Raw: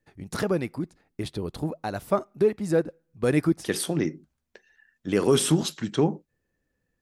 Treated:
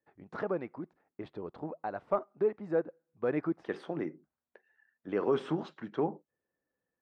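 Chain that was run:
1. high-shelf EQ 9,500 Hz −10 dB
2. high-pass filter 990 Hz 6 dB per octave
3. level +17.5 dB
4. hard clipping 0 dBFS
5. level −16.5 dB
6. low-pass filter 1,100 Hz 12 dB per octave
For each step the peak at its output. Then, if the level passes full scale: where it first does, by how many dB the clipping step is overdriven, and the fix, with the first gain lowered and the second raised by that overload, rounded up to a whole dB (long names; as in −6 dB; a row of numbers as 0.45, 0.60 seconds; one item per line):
−9.0, −14.5, +3.0, 0.0, −16.5, −17.0 dBFS
step 3, 3.0 dB
step 3 +14.5 dB, step 5 −13.5 dB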